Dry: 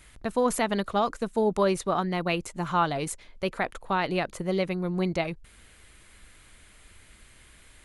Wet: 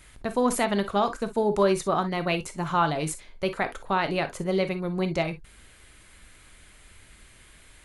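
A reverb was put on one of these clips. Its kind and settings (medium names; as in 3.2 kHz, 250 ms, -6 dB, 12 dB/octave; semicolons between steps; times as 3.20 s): gated-style reverb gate 80 ms flat, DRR 9 dB; trim +1 dB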